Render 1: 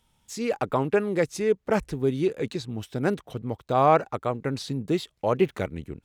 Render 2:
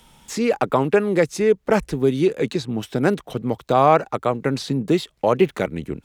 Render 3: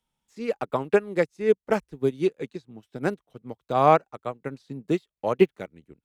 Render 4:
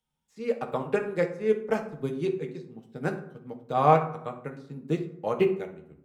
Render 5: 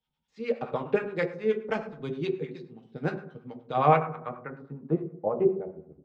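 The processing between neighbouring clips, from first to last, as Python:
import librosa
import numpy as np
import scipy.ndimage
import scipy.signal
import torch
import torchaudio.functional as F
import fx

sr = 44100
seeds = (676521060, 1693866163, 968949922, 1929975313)

y1 = fx.peak_eq(x, sr, hz=94.0, db=-12.5, octaves=0.4)
y1 = fx.band_squash(y1, sr, depth_pct=40)
y1 = F.gain(torch.from_numpy(y1), 6.0).numpy()
y2 = fx.upward_expand(y1, sr, threshold_db=-31.0, expansion=2.5)
y3 = fx.rev_fdn(y2, sr, rt60_s=0.69, lf_ratio=1.25, hf_ratio=0.55, size_ms=38.0, drr_db=3.0)
y3 = F.gain(torch.from_numpy(y3), -5.0).numpy()
y4 = fx.harmonic_tremolo(y3, sr, hz=9.5, depth_pct=70, crossover_hz=760.0)
y4 = fx.filter_sweep_lowpass(y4, sr, from_hz=3900.0, to_hz=630.0, start_s=3.58, end_s=5.4, q=1.4)
y4 = F.gain(torch.from_numpy(y4), 2.0).numpy()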